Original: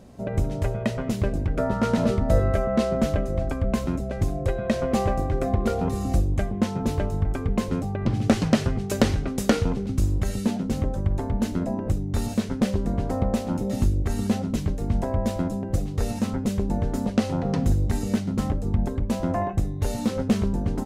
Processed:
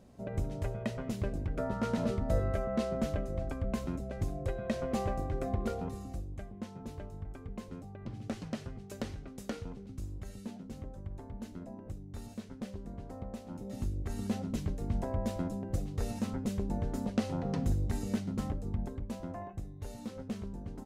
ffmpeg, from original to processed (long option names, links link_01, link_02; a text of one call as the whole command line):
ffmpeg -i in.wav -af "volume=-0.5dB,afade=type=out:start_time=5.64:duration=0.49:silence=0.375837,afade=type=in:start_time=13.43:duration=1.11:silence=0.334965,afade=type=out:start_time=18.26:duration=1.13:silence=0.398107" out.wav